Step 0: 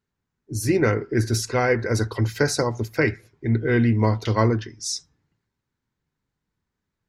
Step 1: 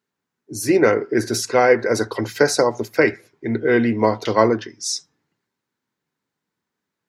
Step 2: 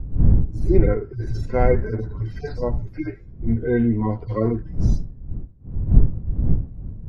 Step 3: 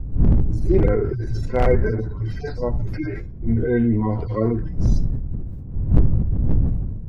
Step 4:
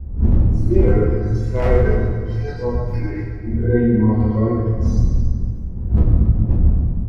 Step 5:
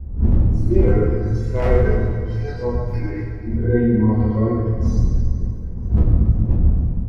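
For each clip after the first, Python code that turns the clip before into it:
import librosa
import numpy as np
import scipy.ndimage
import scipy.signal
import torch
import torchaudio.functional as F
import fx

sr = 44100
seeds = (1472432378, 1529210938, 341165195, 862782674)

y1 = scipy.signal.sosfilt(scipy.signal.butter(2, 230.0, 'highpass', fs=sr, output='sos'), x)
y1 = fx.dynamic_eq(y1, sr, hz=620.0, q=1.1, threshold_db=-36.0, ratio=4.0, max_db=5)
y1 = F.gain(torch.from_numpy(y1), 3.5).numpy()
y2 = fx.hpss_only(y1, sr, part='harmonic')
y2 = fx.dmg_wind(y2, sr, seeds[0], corner_hz=150.0, level_db=-29.0)
y2 = fx.riaa(y2, sr, side='playback')
y2 = F.gain(torch.from_numpy(y2), -7.0).numpy()
y3 = np.minimum(y2, 2.0 * 10.0 ** (-8.5 / 20.0) - y2)
y3 = fx.sustainer(y3, sr, db_per_s=36.0)
y4 = y3 + 10.0 ** (-14.0 / 20.0) * np.pad(y3, (int(280 * sr / 1000.0), 0))[:len(y3)]
y4 = fx.rev_fdn(y4, sr, rt60_s=1.6, lf_ratio=1.2, hf_ratio=0.8, size_ms=83.0, drr_db=-6.5)
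y4 = F.gain(torch.from_numpy(y4), -6.0).numpy()
y5 = fx.echo_feedback(y4, sr, ms=476, feedback_pct=59, wet_db=-22)
y5 = F.gain(torch.from_numpy(y5), -1.0).numpy()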